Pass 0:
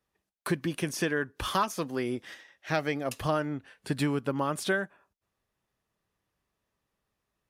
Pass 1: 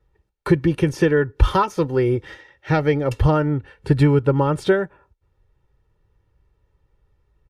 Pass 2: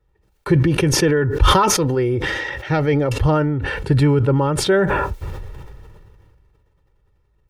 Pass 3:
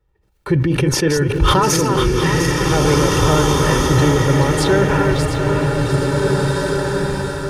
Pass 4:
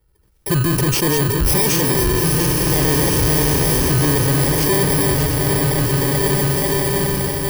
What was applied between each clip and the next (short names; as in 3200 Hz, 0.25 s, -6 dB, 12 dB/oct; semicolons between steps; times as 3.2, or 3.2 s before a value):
RIAA curve playback; comb 2.2 ms, depth 72%; gain +6.5 dB
sustainer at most 24 dB/s; gain -1 dB
regenerating reverse delay 0.351 s, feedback 62%, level -6 dB; bloom reverb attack 2.02 s, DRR 0.5 dB; gain -1 dB
FFT order left unsorted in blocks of 32 samples; soft clip -16 dBFS, distortion -10 dB; gain +3.5 dB